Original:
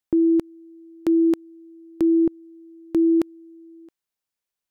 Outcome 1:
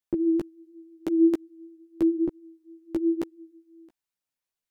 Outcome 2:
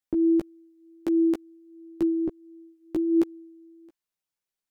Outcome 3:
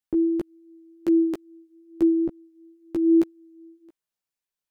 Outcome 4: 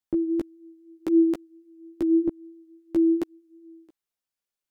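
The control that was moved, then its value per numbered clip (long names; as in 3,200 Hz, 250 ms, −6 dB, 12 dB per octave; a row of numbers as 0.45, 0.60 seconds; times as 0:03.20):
multi-voice chorus, speed: 0.84, 0.2, 0.33, 0.56 Hertz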